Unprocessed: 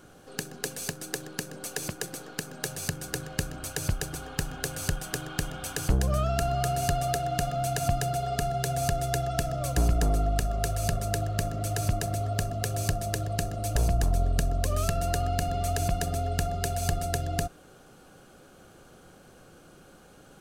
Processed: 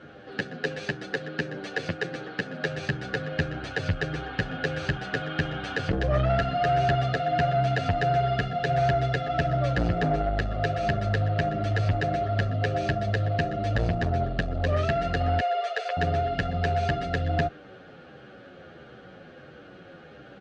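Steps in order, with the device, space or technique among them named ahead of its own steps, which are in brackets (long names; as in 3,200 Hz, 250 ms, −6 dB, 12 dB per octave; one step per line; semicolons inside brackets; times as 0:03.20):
0:15.39–0:15.97: Chebyshev high-pass filter 430 Hz, order 6
barber-pole flanger into a guitar amplifier (barber-pole flanger 9.3 ms −1.5 Hz; soft clipping −24 dBFS, distortion −16 dB; loudspeaker in its box 80–3,800 Hz, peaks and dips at 540 Hz +3 dB, 1,000 Hz −7 dB, 1,800 Hz +7 dB)
level +9 dB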